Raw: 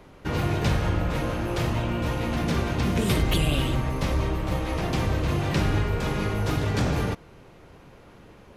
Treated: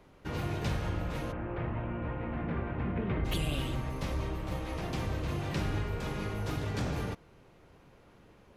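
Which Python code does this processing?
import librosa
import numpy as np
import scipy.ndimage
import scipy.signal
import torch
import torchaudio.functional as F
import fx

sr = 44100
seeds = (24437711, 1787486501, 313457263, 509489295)

y = fx.lowpass(x, sr, hz=2200.0, slope=24, at=(1.31, 3.24), fade=0.02)
y = y * librosa.db_to_amplitude(-9.0)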